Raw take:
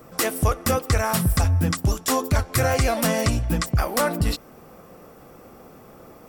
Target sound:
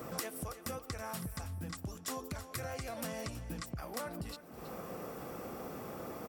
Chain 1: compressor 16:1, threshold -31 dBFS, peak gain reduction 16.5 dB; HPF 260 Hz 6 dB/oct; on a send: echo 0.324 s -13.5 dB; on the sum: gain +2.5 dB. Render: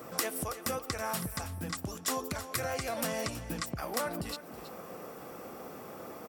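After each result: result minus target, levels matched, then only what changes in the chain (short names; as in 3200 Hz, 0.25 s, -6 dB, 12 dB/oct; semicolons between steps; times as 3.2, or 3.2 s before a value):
compressor: peak gain reduction -8 dB; 125 Hz band -4.0 dB
change: compressor 16:1, threshold -39.5 dBFS, peak gain reduction 24.5 dB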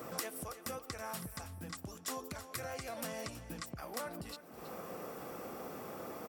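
125 Hz band -4.5 dB
change: HPF 83 Hz 6 dB/oct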